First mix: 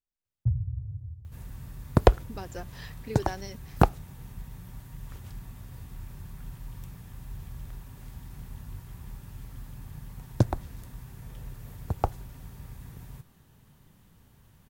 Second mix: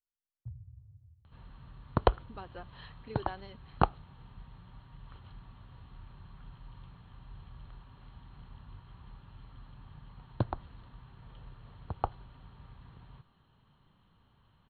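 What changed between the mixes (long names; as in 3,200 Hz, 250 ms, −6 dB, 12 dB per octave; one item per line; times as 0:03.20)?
first sound −9.5 dB
master: add Chebyshev low-pass with heavy ripple 4,300 Hz, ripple 9 dB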